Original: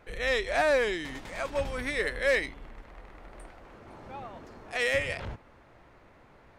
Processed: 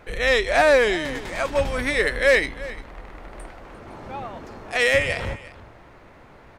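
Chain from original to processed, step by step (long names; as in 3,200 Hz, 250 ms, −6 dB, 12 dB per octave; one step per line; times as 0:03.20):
single-tap delay 349 ms −17.5 dB
level +8.5 dB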